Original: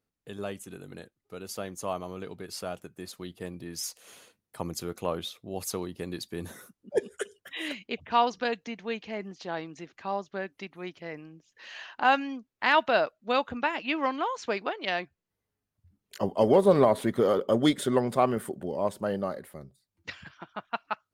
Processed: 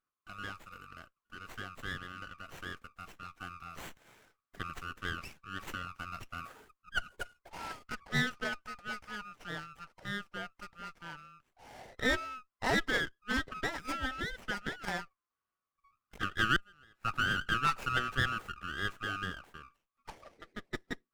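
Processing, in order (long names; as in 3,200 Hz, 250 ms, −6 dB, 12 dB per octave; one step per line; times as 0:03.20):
neighbouring bands swapped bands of 1,000 Hz
0:16.56–0:17.05: gate with flip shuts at −20 dBFS, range −33 dB
windowed peak hold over 9 samples
level −6 dB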